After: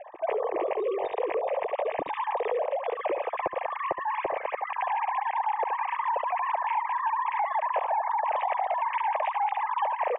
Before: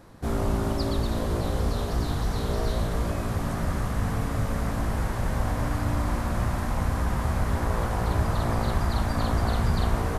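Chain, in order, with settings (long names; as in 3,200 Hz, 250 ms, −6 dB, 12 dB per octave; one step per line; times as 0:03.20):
three sine waves on the formant tracks
phaser with its sweep stopped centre 590 Hz, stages 4
on a send: single-tap delay 71 ms −12 dB
on the sum: downward compressor, threshold −29 dBFS, peak gain reduction 10 dB
Butterworth low-pass 2,500 Hz 36 dB per octave
low-shelf EQ 430 Hz −9.5 dB
level +7 dB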